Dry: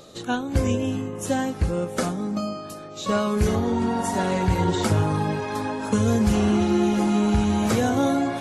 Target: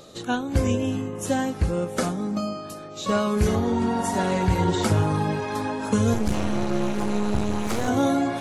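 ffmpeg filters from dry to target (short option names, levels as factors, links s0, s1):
-filter_complex "[0:a]asettb=1/sr,asplit=3[s0][s1][s2];[s0]atrim=end=6.144[s3];[s1]atrim=start=6.14:end=7.88,asetpts=PTS-STARTPTS,afade=t=in:d=0.004:c=qsin,afade=t=out:st=1.736:d=0.004:c=qsin,aeval=exprs='max(val(0),0)':c=same[s4];[s2]atrim=start=7.876[s5];[s3][s4]acrossfade=d=0.004:c1=hsin:c2=qsin[s6];[s6][s5]acrossfade=d=0.004:c1=qsin:c2=hsin"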